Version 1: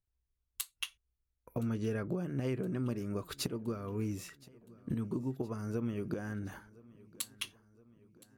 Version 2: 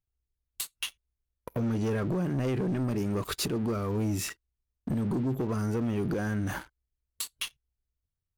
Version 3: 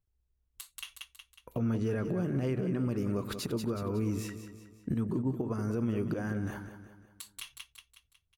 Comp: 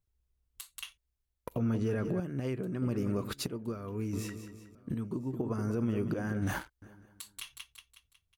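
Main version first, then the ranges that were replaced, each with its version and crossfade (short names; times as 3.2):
3
0.92–1.51 from 2
2.2–2.82 from 1
3.33–4.13 from 1
4.75–5.33 from 1
6.42–6.82 from 2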